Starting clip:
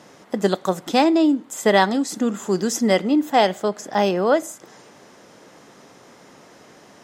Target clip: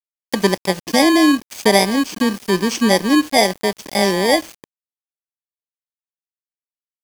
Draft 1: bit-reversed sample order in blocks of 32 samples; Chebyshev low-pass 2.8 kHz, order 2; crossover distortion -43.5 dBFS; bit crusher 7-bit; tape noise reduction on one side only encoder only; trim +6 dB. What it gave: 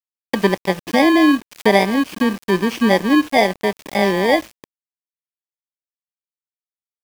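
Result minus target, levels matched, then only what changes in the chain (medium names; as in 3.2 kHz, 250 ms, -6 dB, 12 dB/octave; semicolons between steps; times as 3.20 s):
8 kHz band -10.5 dB
change: Chebyshev low-pass 5.9 kHz, order 2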